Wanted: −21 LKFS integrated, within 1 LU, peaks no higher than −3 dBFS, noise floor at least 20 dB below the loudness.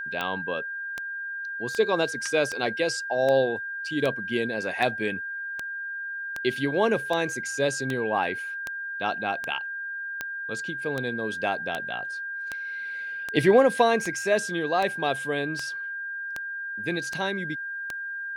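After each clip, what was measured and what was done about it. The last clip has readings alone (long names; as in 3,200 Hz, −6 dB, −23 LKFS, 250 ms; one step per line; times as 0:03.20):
number of clicks 24; interfering tone 1,600 Hz; level of the tone −31 dBFS; integrated loudness −27.5 LKFS; sample peak −6.5 dBFS; target loudness −21.0 LKFS
→ click removal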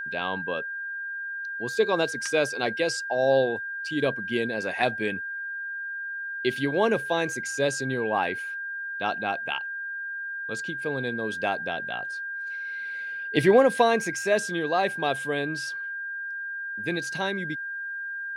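number of clicks 0; interfering tone 1,600 Hz; level of the tone −31 dBFS
→ notch filter 1,600 Hz, Q 30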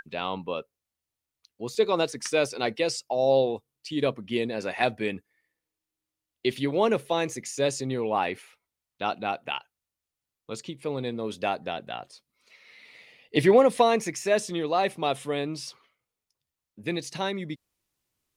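interfering tone none found; integrated loudness −27.0 LKFS; sample peak −6.5 dBFS; target loudness −21.0 LKFS
→ level +6 dB
brickwall limiter −3 dBFS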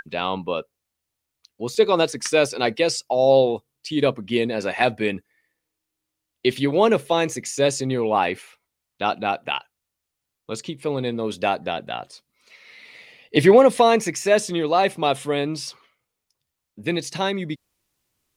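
integrated loudness −21.5 LKFS; sample peak −3.0 dBFS; background noise floor −82 dBFS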